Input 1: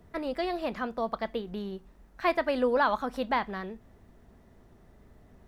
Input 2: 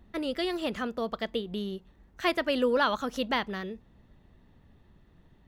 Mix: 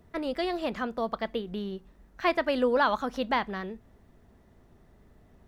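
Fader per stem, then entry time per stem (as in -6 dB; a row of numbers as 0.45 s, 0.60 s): -2.0 dB, -9.0 dB; 0.00 s, 0.00 s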